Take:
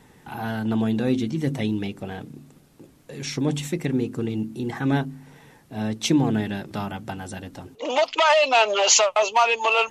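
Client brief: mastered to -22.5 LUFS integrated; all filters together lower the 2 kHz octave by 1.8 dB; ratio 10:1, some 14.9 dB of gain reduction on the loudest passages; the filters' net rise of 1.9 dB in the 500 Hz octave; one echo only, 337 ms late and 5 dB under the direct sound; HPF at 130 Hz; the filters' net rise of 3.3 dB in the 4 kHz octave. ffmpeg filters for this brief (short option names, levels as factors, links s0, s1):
-af "highpass=130,equalizer=f=500:t=o:g=3,equalizer=f=2000:t=o:g=-6.5,equalizer=f=4000:t=o:g=7,acompressor=threshold=0.0562:ratio=10,aecho=1:1:337:0.562,volume=2.24"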